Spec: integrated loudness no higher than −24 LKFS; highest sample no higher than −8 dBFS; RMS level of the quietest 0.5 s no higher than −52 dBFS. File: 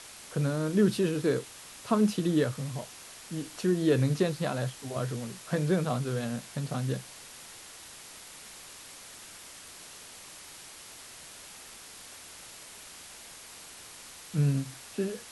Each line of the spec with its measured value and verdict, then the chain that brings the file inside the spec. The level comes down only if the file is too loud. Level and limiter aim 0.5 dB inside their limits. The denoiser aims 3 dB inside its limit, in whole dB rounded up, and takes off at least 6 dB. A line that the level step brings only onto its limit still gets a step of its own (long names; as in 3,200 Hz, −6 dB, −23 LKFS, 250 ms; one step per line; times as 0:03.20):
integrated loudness −30.0 LKFS: in spec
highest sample −13.0 dBFS: in spec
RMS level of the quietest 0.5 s −48 dBFS: out of spec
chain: broadband denoise 7 dB, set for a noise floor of −48 dBFS